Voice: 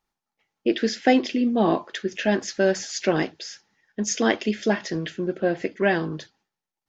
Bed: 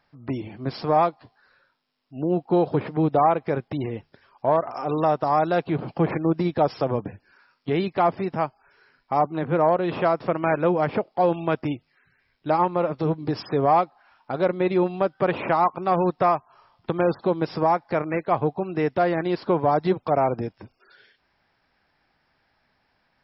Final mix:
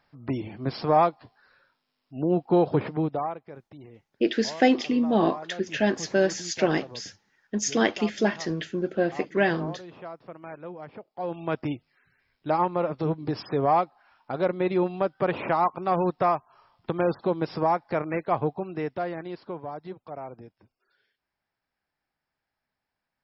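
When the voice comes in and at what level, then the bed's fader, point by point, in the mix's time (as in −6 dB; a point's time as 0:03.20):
3.55 s, −1.5 dB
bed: 0:02.88 −0.5 dB
0:03.48 −18.5 dB
0:10.98 −18.5 dB
0:11.58 −3 dB
0:18.44 −3 dB
0:19.79 −17 dB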